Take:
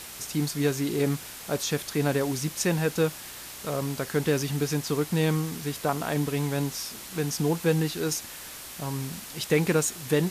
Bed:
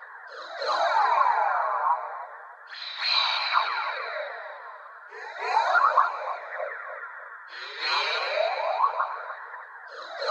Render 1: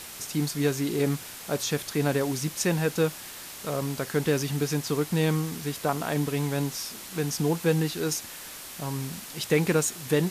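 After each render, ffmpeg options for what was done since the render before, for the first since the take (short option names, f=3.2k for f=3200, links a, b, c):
-af "bandreject=f=60:t=h:w=4,bandreject=f=120:t=h:w=4"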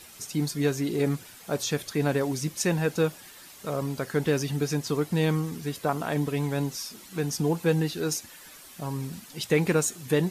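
-af "afftdn=nr=10:nf=-42"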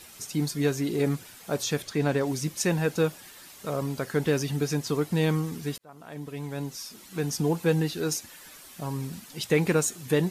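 -filter_complex "[0:a]asettb=1/sr,asplit=3[a][b][c];[a]atrim=end=1.824[d];[b]atrim=start=1.82:end=2.27,asetpts=PTS-STARTPTS,afade=t=in:d=0.004:c=qsin,afade=t=out:st=0.446:d=0.004:c=qsin,equalizer=f=12k:t=o:w=0.65:g=-8.5[e];[c]atrim=start=2.266[f];[d][e]acrossfade=d=0.004:c1=hsin:c2=qsin[g];[g][f]acrossfade=d=0.004:c1=qsin:c2=hsin,asplit=2[h][i];[h]atrim=end=5.78,asetpts=PTS-STARTPTS,afade=t=out:st=5.776:d=0.004:c=hsin[j];[i]atrim=start=5.78,asetpts=PTS-STARTPTS,afade=t=in:d=1.51[k];[j][k]concat=n=2:v=0:a=1"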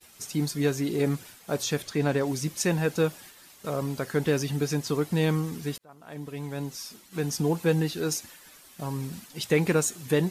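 -af "agate=range=-33dB:threshold=-43dB:ratio=3:detection=peak"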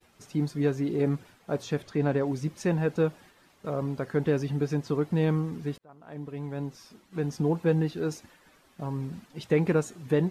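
-af "lowpass=f=1.2k:p=1"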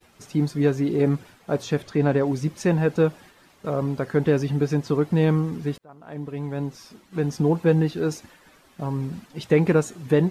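-af "volume=5.5dB"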